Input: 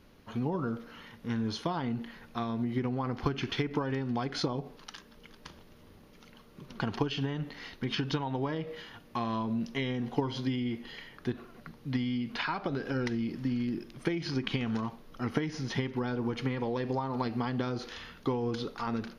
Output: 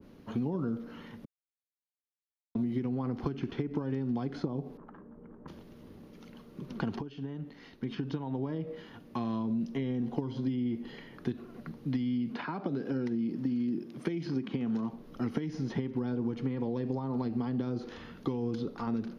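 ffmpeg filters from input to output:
ffmpeg -i in.wav -filter_complex "[0:a]asettb=1/sr,asplit=3[link_01][link_02][link_03];[link_01]atrim=end=4.774[link_04];[link_02]atrim=start=4.77:end=5.48,asetpts=PTS-STARTPTS,afade=type=in:duration=0.004:curve=qsin,afade=type=out:start_time=0.706:duration=0.004:curve=qsin,lowpass=frequency=1300:width=0.5412,lowpass=frequency=1300:width=1.3066[link_05];[link_03]atrim=start=5.476[link_06];[link_04][link_05]acrossfade=duration=0.004:curve1=hsin:curve2=qsin[link_07];[link_07][link_06]acrossfade=duration=0.004:curve1=qsin:curve2=hsin,asettb=1/sr,asplit=3[link_08][link_09][link_10];[link_08]atrim=end=12.334[link_11];[link_09]atrim=start=12.33:end=14.93,asetpts=PTS-STARTPTS,afade=type=in:duration=0.004:curve=qsin,afade=type=out:start_time=2.596:duration=0.004:curve=qsin,highpass=150[link_12];[link_10]atrim=start=14.926[link_13];[link_11][link_12]acrossfade=duration=0.004:curve1=hsin:curve2=qsin[link_14];[link_14][link_13]acrossfade=duration=0.004:curve1=qsin:curve2=hsin,asplit=4[link_15][link_16][link_17][link_18];[link_15]atrim=end=1.25,asetpts=PTS-STARTPTS,afade=type=out:start_time=1.246:duration=0.004:curve=hsin[link_19];[link_16]atrim=start=1.25:end=2.55,asetpts=PTS-STARTPTS,volume=0[link_20];[link_17]atrim=start=2.55:end=7.01,asetpts=PTS-STARTPTS,afade=type=in:duration=0.004:curve=hsin,afade=type=out:start_time=4.456:duration=0.004:curve=hsin:silence=0.16788[link_21];[link_18]atrim=start=7.01,asetpts=PTS-STARTPTS,afade=type=in:duration=3.79:curve=qsin:silence=0.16788[link_22];[link_19][link_20][link_21][link_22]concat=n=4:v=0:a=1,equalizer=frequency=250:width_type=o:width=2.6:gain=11,acrossover=split=200|2400[link_23][link_24][link_25];[link_23]acompressor=threshold=-33dB:ratio=4[link_26];[link_24]acompressor=threshold=-31dB:ratio=4[link_27];[link_25]acompressor=threshold=-47dB:ratio=4[link_28];[link_26][link_27][link_28]amix=inputs=3:normalize=0,adynamicequalizer=threshold=0.00398:dfrequency=1500:dqfactor=0.7:tfrequency=1500:tqfactor=0.7:attack=5:release=100:ratio=0.375:range=3:mode=cutabove:tftype=highshelf,volume=-3dB" out.wav

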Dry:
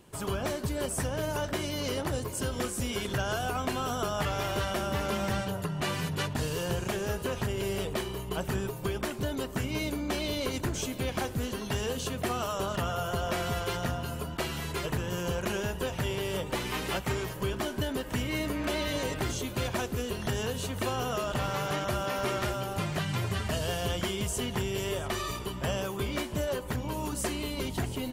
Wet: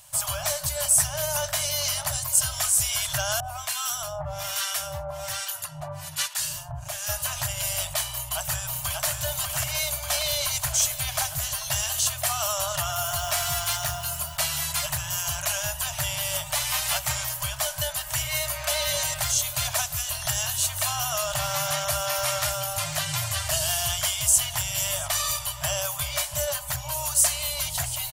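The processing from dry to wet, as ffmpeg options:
ffmpeg -i in.wav -filter_complex "[0:a]asettb=1/sr,asplit=3[link_01][link_02][link_03];[link_01]atrim=end=3.404[link_04];[link_02]atrim=start=3.4:end=7.09,asetpts=PTS-STARTPTS,afade=type=in:duration=0.004:curve=qsin,afade=type=out:start_time=3.686:duration=0.004:curve=qsin,acrossover=split=960[link_05][link_06];[link_05]aeval=exprs='val(0)*(1-1/2+1/2*cos(2*PI*1.2*n/s))':channel_layout=same[link_07];[link_06]aeval=exprs='val(0)*(1-1/2-1/2*cos(2*PI*1.2*n/s))':channel_layout=same[link_08];[link_07][link_08]amix=inputs=2:normalize=0[link_09];[link_03]atrim=start=7.086[link_10];[link_04][link_09]acrossfade=duration=0.004:curve1=hsin:curve2=qsin[link_11];[link_11][link_10]acrossfade=duration=0.004:curve1=qsin:curve2=hsin,asplit=2[link_12][link_13];[link_13]afade=type=in:start_time=8.1:duration=0.01,afade=type=out:start_time=9.04:duration=0.01,aecho=0:1:590|1180|1770|2360|2950|3540|4130|4720|5310|5900|6490|7080:0.595662|0.446747|0.33506|0.251295|0.188471|0.141353|0.106015|0.0795113|0.0596335|0.0447251|0.0335438|0.0251579[link_14];[link_12][link_14]amix=inputs=2:normalize=0,asettb=1/sr,asplit=3[link_15][link_16][link_17];[link_15]atrim=end=12.934[link_18];[link_16]atrim=start=12.93:end=14.39,asetpts=PTS-STARTPTS,afade=type=in:duration=0.004:curve=qsin,afade=type=out:start_time=1.456:duration=0.004:curve=qsin,acrusher=bits=7:mode=log:mix=0:aa=0.000001[link_19];[link_17]atrim=start=14.386[link_20];[link_18][link_19]acrossfade=duration=0.004:curve1=hsin:curve2=qsin[link_21];[link_21][link_20]acrossfade=duration=0.004:curve1=qsin:curve2=hsin,bass=frequency=250:gain=-4,treble=frequency=4000:gain=15,afftfilt=real='re*(1-between(b*sr/4096,160,560))':imag='im*(1-between(b*sr/4096,160,560))':win_size=4096:overlap=0.75,volume=3dB" out.wav

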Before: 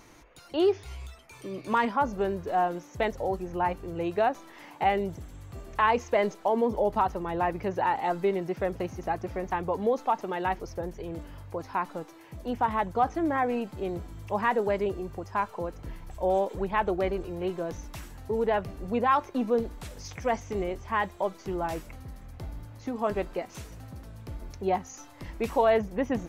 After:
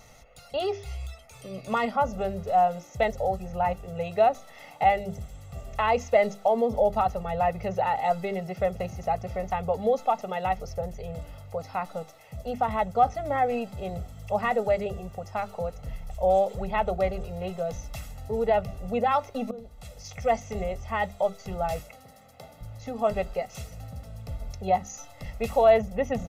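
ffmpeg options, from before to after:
ffmpeg -i in.wav -filter_complex "[0:a]asettb=1/sr,asplit=3[link_01][link_02][link_03];[link_01]atrim=end=21.794[link_04];[link_02]atrim=start=21.79:end=22.61,asetpts=PTS-STARTPTS,afade=type=in:duration=0.004:curve=qsin,afade=type=out:start_time=0.816:duration=0.004:curve=qsin,highpass=280[link_05];[link_03]atrim=start=22.606[link_06];[link_04][link_05]acrossfade=duration=0.004:curve1=hsin:curve2=qsin[link_07];[link_07][link_06]acrossfade=duration=0.004:curve1=qsin:curve2=hsin,asplit=2[link_08][link_09];[link_08]atrim=end=19.51,asetpts=PTS-STARTPTS,afade=type=out:start_time=19.506:duration=0.004:curve=hsin:silence=0.0794328[link_10];[link_09]atrim=start=19.51,asetpts=PTS-STARTPTS,afade=type=in:duration=0.78:silence=0.0794328[link_11];[link_10][link_11]concat=n=2:v=0:a=1,equalizer=frequency=1500:width_type=o:width=0.58:gain=-7,bandreject=frequency=50:width_type=h:width=6,bandreject=frequency=100:width_type=h:width=6,bandreject=frequency=150:width_type=h:width=6,bandreject=frequency=200:width_type=h:width=6,bandreject=frequency=250:width_type=h:width=6,bandreject=frequency=300:width_type=h:width=6,bandreject=frequency=350:width_type=h:width=6,bandreject=frequency=400:width_type=h:width=6,aecho=1:1:1.5:0.99" out.wav

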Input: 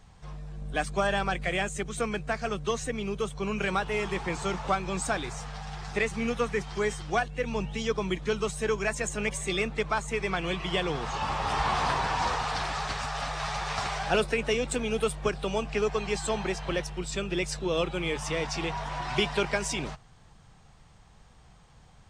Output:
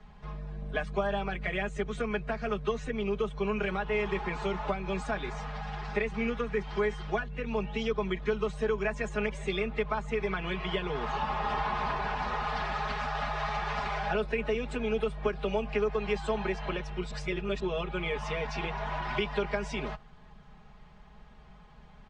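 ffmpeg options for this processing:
ffmpeg -i in.wav -filter_complex "[0:a]asplit=3[link_01][link_02][link_03];[link_01]atrim=end=17.112[link_04];[link_02]atrim=start=17.108:end=17.602,asetpts=PTS-STARTPTS,areverse[link_05];[link_03]atrim=start=17.598[link_06];[link_04][link_05]acrossfade=duration=0.004:curve1=hsin:curve2=hsin[link_07];[link_07][link_06]acrossfade=duration=0.004:curve1=hsin:curve2=hsin,acrossover=split=94|270[link_08][link_09][link_10];[link_08]acompressor=threshold=-41dB:ratio=4[link_11];[link_09]acompressor=threshold=-46dB:ratio=4[link_12];[link_10]acompressor=threshold=-32dB:ratio=4[link_13];[link_11][link_12][link_13]amix=inputs=3:normalize=0,lowpass=2900,aecho=1:1:4.8:0.91" out.wav

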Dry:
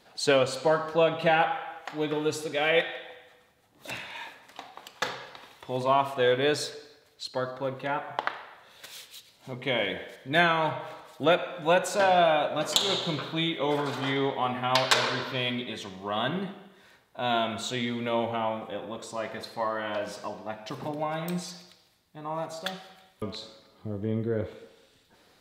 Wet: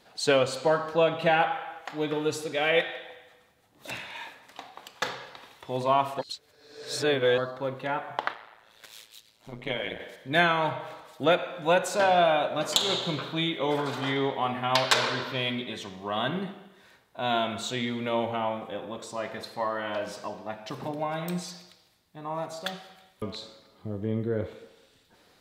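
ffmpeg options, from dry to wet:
ffmpeg -i in.wav -filter_complex "[0:a]asettb=1/sr,asplit=3[link_01][link_02][link_03];[link_01]atrim=end=8.334[link_04];[link_02]atrim=start=8.33:end=10,asetpts=PTS-STARTPTS,afade=type=in:duration=0.004:curve=qsin,afade=type=out:start_time=1.666:duration=0.004:curve=qsin,tremolo=f=110:d=0.857[link_05];[link_03]atrim=start=9.996[link_06];[link_04][link_05]acrossfade=duration=0.004:curve1=hsin:curve2=qsin[link_07];[link_07][link_06]acrossfade=duration=0.004:curve1=qsin:curve2=hsin,asplit=3[link_08][link_09][link_10];[link_08]atrim=end=6.192[link_11];[link_09]atrim=start=6.188:end=7.382,asetpts=PTS-STARTPTS,areverse[link_12];[link_10]atrim=start=7.378[link_13];[link_11][link_12]acrossfade=duration=0.004:curve1=hsin:curve2=hsin[link_14];[link_14][link_13]acrossfade=duration=0.004:curve1=hsin:curve2=hsin" out.wav

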